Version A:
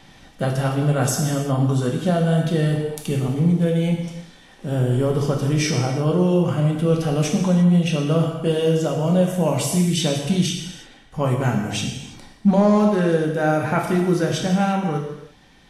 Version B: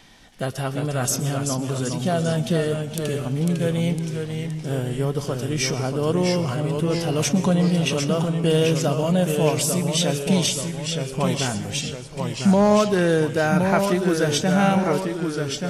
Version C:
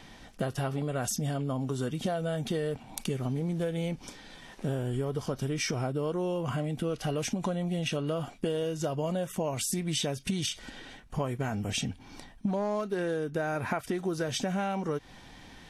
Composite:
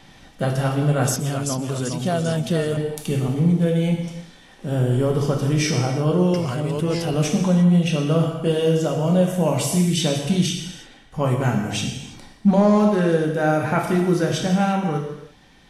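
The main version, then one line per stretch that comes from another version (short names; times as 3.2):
A
1.16–2.77 from B
6.34–7.14 from B
not used: C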